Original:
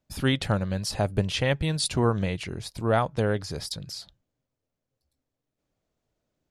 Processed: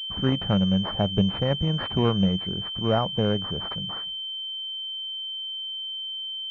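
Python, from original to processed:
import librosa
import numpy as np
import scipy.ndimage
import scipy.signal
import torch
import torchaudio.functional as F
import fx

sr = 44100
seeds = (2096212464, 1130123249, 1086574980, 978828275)

y = fx.peak_eq(x, sr, hz=190.0, db=10.0, octaves=0.28)
y = fx.pwm(y, sr, carrier_hz=3100.0)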